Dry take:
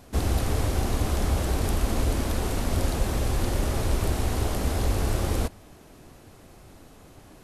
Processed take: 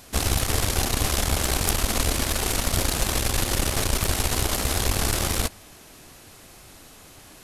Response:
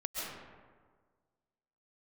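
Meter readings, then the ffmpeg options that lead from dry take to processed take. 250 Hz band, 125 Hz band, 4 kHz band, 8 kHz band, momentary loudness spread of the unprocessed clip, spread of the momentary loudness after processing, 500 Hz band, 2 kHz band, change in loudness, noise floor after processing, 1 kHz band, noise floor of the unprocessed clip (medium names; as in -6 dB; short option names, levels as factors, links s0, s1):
-0.5 dB, -1.0 dB, +10.5 dB, +11.5 dB, 1 LU, 1 LU, +0.5 dB, +7.5 dB, +3.5 dB, -48 dBFS, +3.5 dB, -51 dBFS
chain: -af "aeval=exprs='0.266*(cos(1*acos(clip(val(0)/0.266,-1,1)))-cos(1*PI/2))+0.0473*(cos(4*acos(clip(val(0)/0.266,-1,1)))-cos(4*PI/2))':c=same,tiltshelf=f=1300:g=-6.5,volume=1.68"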